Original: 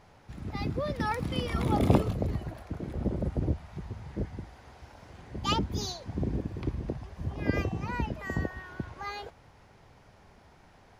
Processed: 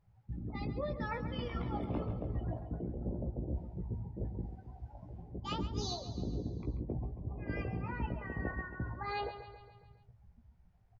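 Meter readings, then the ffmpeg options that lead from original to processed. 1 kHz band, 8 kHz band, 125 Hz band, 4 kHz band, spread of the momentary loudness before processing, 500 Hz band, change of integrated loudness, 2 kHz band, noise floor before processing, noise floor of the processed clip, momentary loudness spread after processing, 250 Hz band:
-7.0 dB, -8.5 dB, -6.5 dB, -8.0 dB, 16 LU, -7.0 dB, -7.5 dB, -6.0 dB, -58 dBFS, -65 dBFS, 10 LU, -8.0 dB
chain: -filter_complex "[0:a]afftdn=nr=29:nf=-43,highshelf=f=4400:g=-5.5,areverse,acompressor=threshold=0.01:ratio=6,areverse,asplit=2[s0][s1];[s1]adelay=17,volume=0.596[s2];[s0][s2]amix=inputs=2:normalize=0,aecho=1:1:137|274|411|548|685|822:0.266|0.149|0.0834|0.0467|0.0262|0.0147,volume=1.5"

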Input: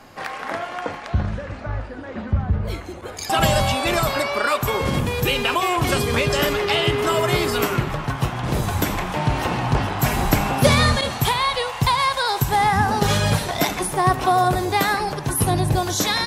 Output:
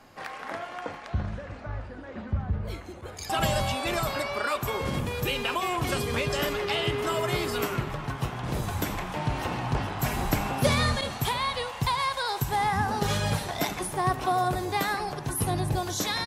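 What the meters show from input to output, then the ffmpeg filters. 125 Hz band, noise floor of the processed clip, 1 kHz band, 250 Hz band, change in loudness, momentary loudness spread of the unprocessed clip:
-8.0 dB, -41 dBFS, -8.0 dB, -8.0 dB, -8.0 dB, 10 LU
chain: -filter_complex "[0:a]asplit=2[s0][s1];[s1]adelay=699.7,volume=0.126,highshelf=f=4000:g=-15.7[s2];[s0][s2]amix=inputs=2:normalize=0,volume=0.398"

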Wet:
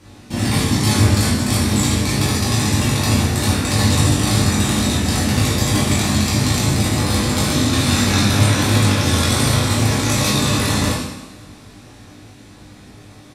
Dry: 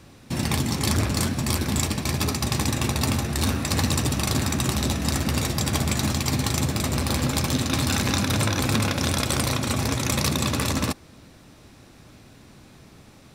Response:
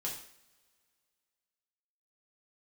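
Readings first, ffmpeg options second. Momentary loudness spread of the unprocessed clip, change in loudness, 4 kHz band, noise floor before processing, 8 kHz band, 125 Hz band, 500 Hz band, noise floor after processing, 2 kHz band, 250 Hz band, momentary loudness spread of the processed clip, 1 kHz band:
2 LU, +7.5 dB, +7.0 dB, -50 dBFS, +6.5 dB, +8.0 dB, +6.5 dB, -42 dBFS, +7.0 dB, +7.5 dB, 3 LU, +6.0 dB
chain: -filter_complex "[0:a]asplit=2[s0][s1];[s1]adelay=20,volume=0.631[s2];[s0][s2]amix=inputs=2:normalize=0[s3];[1:a]atrim=start_sample=2205,asetrate=26019,aresample=44100[s4];[s3][s4]afir=irnorm=-1:irlink=0"

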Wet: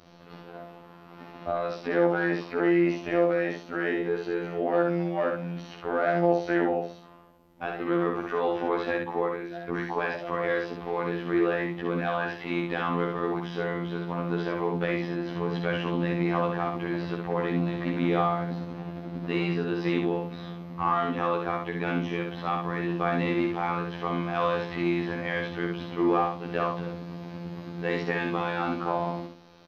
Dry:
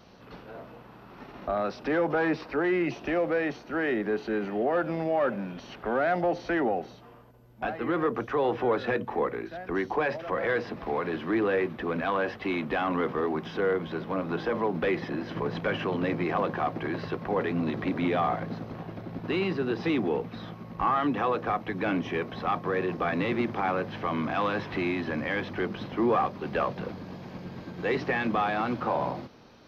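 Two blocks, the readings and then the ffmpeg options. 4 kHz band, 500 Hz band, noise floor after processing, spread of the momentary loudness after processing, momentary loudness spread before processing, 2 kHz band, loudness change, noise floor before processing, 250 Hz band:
+0.5 dB, +0.5 dB, -49 dBFS, 11 LU, 11 LU, 0.0 dB, +0.5 dB, -49 dBFS, +1.5 dB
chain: -af "afftfilt=real='hypot(re,im)*cos(PI*b)':imag='0':win_size=2048:overlap=0.75,aecho=1:1:64|128|192:0.631|0.139|0.0305,volume=1.26"

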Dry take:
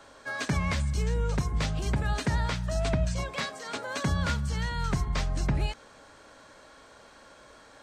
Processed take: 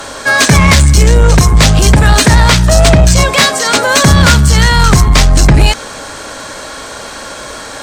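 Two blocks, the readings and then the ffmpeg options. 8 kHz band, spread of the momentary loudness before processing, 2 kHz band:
+29.0 dB, 6 LU, +23.5 dB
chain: -af "apsyclip=11.9,aemphasis=mode=production:type=cd,acontrast=44,volume=0.891"

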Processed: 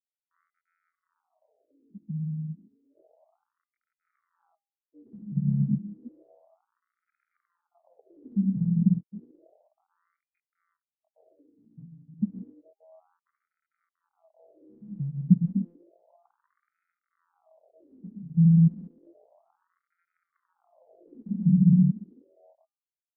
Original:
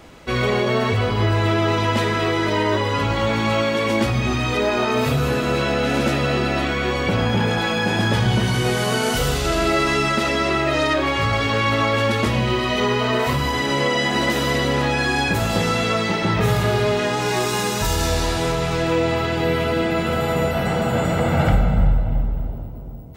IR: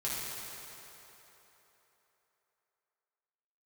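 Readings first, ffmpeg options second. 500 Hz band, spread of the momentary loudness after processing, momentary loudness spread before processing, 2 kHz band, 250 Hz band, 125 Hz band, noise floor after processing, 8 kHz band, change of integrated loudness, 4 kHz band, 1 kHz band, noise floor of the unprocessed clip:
under -40 dB, 20 LU, 3 LU, under -40 dB, -5.5 dB, -7.0 dB, under -85 dBFS, under -40 dB, -5.0 dB, under -40 dB, under -40 dB, -23 dBFS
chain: -filter_complex "[0:a]afftfilt=real='re*(1-between(b*sr/4096,210,3200))':imag='im*(1-between(b*sr/4096,210,3200))':win_size=4096:overlap=0.75,adynamicequalizer=threshold=0.00355:dfrequency=1100:dqfactor=1.3:tfrequency=1100:tqfactor=1.3:attack=5:release=100:ratio=0.375:range=1.5:mode=cutabove:tftype=bell,dynaudnorm=f=300:g=7:m=1.58,asplit=2[s0][s1];[s1]adelay=190,highpass=300,lowpass=3400,asoftclip=type=hard:threshold=0.251,volume=0.0316[s2];[s0][s2]amix=inputs=2:normalize=0,afftfilt=real='re*gte(hypot(re,im),0.501)':imag='im*gte(hypot(re,im),0.501)':win_size=1024:overlap=0.75,highpass=150,equalizer=f=640:w=5.9:g=13,aecho=1:1:1.5:0.35,bandreject=f=403.2:t=h:w=4,bandreject=f=806.4:t=h:w=4,bandreject=f=1209.6:t=h:w=4,bandreject=f=1612.8:t=h:w=4,bandreject=f=2016:t=h:w=4,bandreject=f=2419.2:t=h:w=4,bandreject=f=2822.4:t=h:w=4,bandreject=f=3225.6:t=h:w=4,alimiter=level_in=11.2:limit=0.891:release=50:level=0:latency=1,afftfilt=real='re*between(b*sr/1024,220*pow(1800/220,0.5+0.5*sin(2*PI*0.31*pts/sr))/1.41,220*pow(1800/220,0.5+0.5*sin(2*PI*0.31*pts/sr))*1.41)':imag='im*between(b*sr/1024,220*pow(1800/220,0.5+0.5*sin(2*PI*0.31*pts/sr))/1.41,220*pow(1800/220,0.5+0.5*sin(2*PI*0.31*pts/sr))*1.41)':win_size=1024:overlap=0.75,volume=0.473"

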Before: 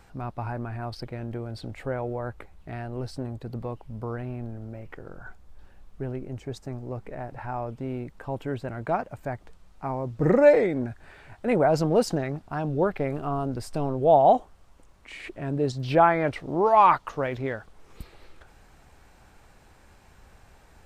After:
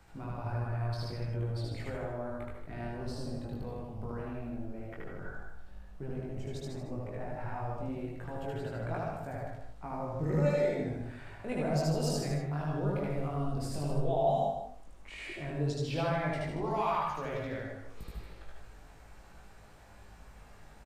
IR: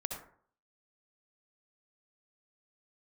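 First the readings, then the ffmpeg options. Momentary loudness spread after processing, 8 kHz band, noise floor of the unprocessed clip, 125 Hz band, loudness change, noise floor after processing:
17 LU, -2.0 dB, -55 dBFS, -2.5 dB, -9.5 dB, -53 dBFS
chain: -filter_complex "[0:a]acrossover=split=140|3000[s0][s1][s2];[s1]acompressor=threshold=0.0112:ratio=2[s3];[s0][s3][s2]amix=inputs=3:normalize=0,aecho=1:1:154:0.316,asplit=2[s4][s5];[1:a]atrim=start_sample=2205,adelay=76[s6];[s5][s6]afir=irnorm=-1:irlink=0,volume=1.19[s7];[s4][s7]amix=inputs=2:normalize=0,flanger=delay=18.5:depth=2.4:speed=0.11,volume=0.75"

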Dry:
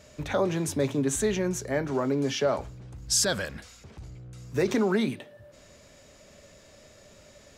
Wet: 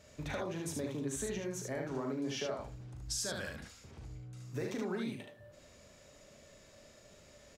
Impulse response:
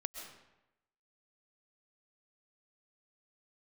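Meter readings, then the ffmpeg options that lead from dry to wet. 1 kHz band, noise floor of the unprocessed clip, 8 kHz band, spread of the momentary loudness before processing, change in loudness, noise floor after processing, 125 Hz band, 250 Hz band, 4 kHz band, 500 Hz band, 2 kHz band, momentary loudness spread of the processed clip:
-11.5 dB, -54 dBFS, -11.5 dB, 20 LU, -12.0 dB, -60 dBFS, -9.5 dB, -11.0 dB, -11.0 dB, -12.0 dB, -10.0 dB, 21 LU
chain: -filter_complex "[0:a]acompressor=threshold=0.0355:ratio=6,asplit=2[s0][s1];[s1]aecho=0:1:39|74:0.447|0.668[s2];[s0][s2]amix=inputs=2:normalize=0,volume=0.422"

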